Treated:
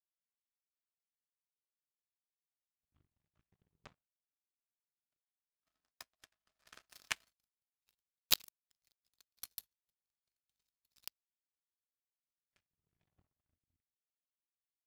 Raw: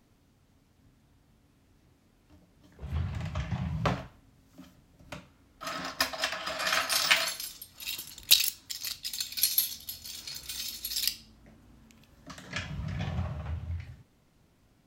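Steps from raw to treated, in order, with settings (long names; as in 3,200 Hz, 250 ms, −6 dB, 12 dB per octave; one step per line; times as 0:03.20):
mains hum 50 Hz, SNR 11 dB
power curve on the samples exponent 3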